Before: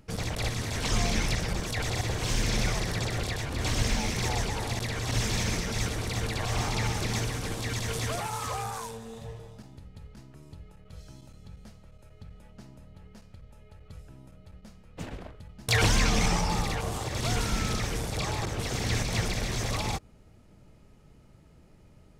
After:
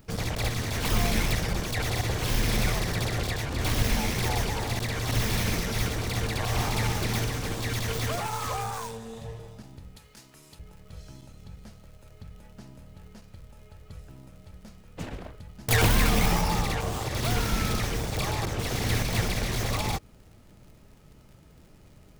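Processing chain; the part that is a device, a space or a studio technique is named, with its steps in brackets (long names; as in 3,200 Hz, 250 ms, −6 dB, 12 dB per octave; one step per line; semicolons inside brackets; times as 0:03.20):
0:09.96–0:10.59: spectral tilt +3.5 dB per octave
record under a worn stylus (stylus tracing distortion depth 0.25 ms; surface crackle; pink noise bed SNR 38 dB)
level +2 dB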